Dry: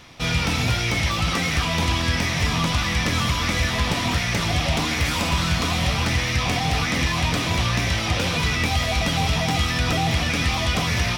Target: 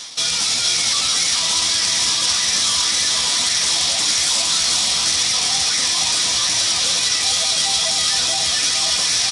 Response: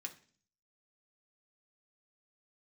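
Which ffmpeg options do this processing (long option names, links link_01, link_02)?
-filter_complex "[0:a]highpass=frequency=920:poles=1,areverse,acompressor=mode=upward:threshold=-30dB:ratio=2.5,areverse,alimiter=limit=-21dB:level=0:latency=1:release=16,flanger=delay=8.8:depth=6.5:regen=31:speed=1.9:shape=sinusoidal,atempo=1.2,asoftclip=type=tanh:threshold=-30dB,aexciter=amount=3.9:drive=8.1:freq=3600,asplit=2[link_01][link_02];[link_02]aecho=0:1:465:0.562[link_03];[link_01][link_03]amix=inputs=2:normalize=0,aresample=22050,aresample=44100,volume=8dB"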